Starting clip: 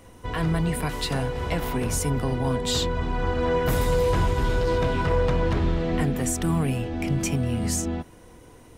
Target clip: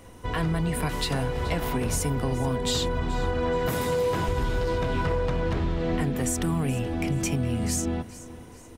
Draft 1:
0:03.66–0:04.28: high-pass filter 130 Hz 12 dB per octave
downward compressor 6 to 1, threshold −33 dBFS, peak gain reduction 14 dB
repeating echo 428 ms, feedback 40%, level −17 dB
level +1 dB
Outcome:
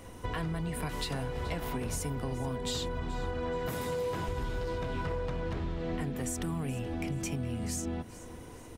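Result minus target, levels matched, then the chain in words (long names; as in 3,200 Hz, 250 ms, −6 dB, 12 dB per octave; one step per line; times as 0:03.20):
downward compressor: peak gain reduction +8.5 dB
0:03.66–0:04.28: high-pass filter 130 Hz 12 dB per octave
downward compressor 6 to 1, threshold −23 dBFS, peak gain reduction 6 dB
repeating echo 428 ms, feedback 40%, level −17 dB
level +1 dB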